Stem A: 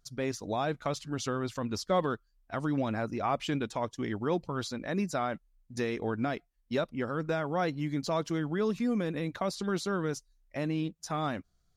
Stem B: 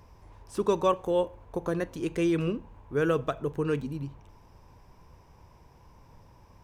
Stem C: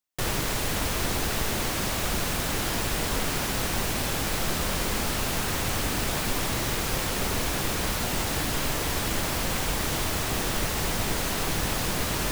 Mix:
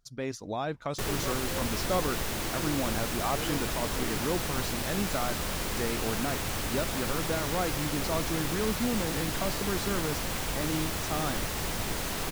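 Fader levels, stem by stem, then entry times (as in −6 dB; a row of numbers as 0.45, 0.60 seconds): −1.5, −15.0, −5.0 decibels; 0.00, 0.40, 0.80 seconds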